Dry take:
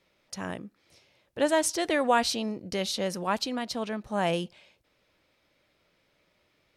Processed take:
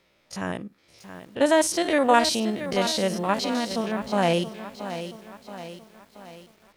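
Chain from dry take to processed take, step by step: spectrogram pixelated in time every 50 ms; bit-crushed delay 676 ms, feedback 55%, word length 9-bit, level -11 dB; trim +6 dB

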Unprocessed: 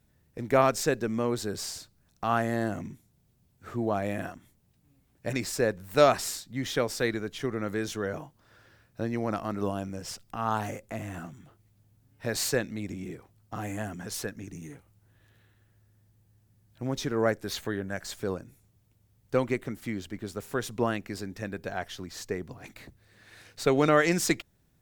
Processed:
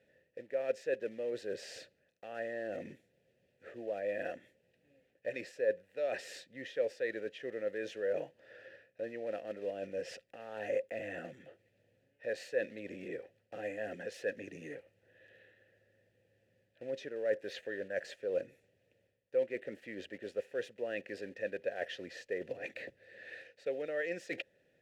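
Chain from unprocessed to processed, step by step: block-companded coder 5-bit; reverse; compression 20:1, threshold -38 dBFS, peak gain reduction 24.5 dB; reverse; vowel filter e; trim +15.5 dB

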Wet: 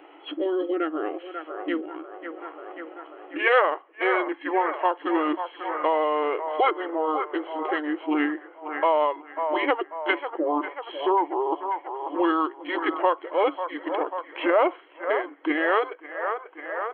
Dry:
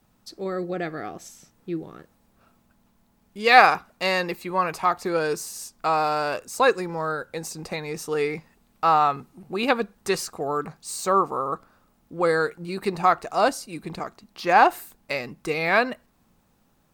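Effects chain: FFT band-pass 290–4200 Hz; formant shift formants -4 st; feedback echo behind a band-pass 540 ms, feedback 51%, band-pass 980 Hz, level -12 dB; three bands compressed up and down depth 70%

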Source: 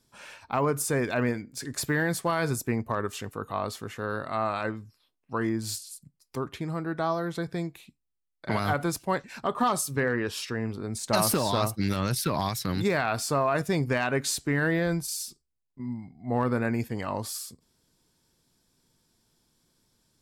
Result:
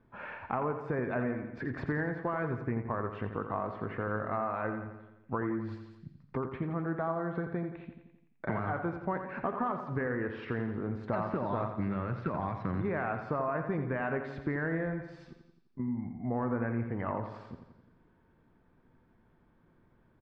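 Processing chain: low-pass 1.9 kHz 24 dB/octave; de-hum 139.2 Hz, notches 33; compression 4:1, threshold -39 dBFS, peak gain reduction 15.5 dB; on a send: feedback delay 86 ms, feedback 58%, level -9 dB; on the sum: trim +6.5 dB

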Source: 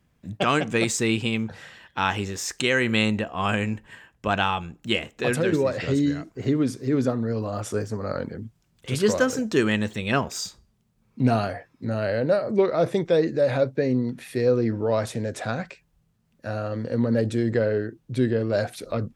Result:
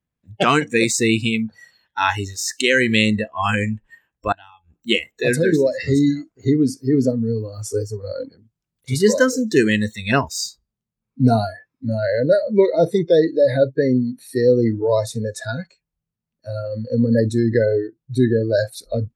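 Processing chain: spectral noise reduction 23 dB; 4.32–4.73 s: inverted gate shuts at -25 dBFS, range -28 dB; trim +6 dB

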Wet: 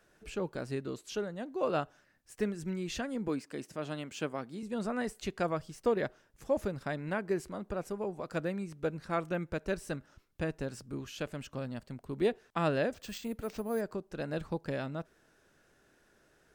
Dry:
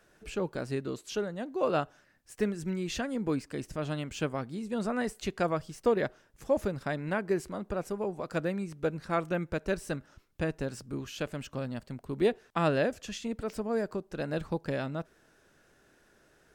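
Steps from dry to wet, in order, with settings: 3.28–4.63 s: high-pass 180 Hz 12 dB/octave; 12.94–13.81 s: careless resampling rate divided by 4×, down none, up hold; trim -3 dB

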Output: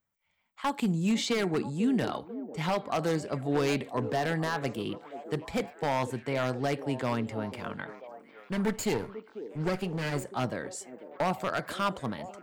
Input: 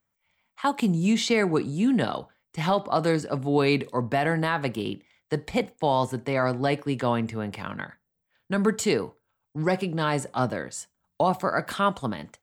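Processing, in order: 8.52–10.24 s: comb filter that takes the minimum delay 0.44 ms; wavefolder -16 dBFS; repeats whose band climbs or falls 493 ms, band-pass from 370 Hz, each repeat 0.7 oct, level -9 dB; trim -4.5 dB

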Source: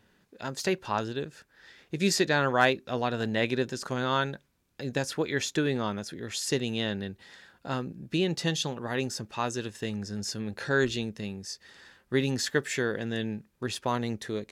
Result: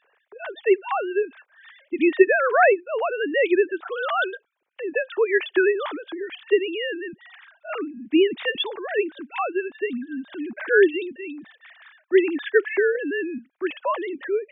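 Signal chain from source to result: formants replaced by sine waves; trim +7 dB

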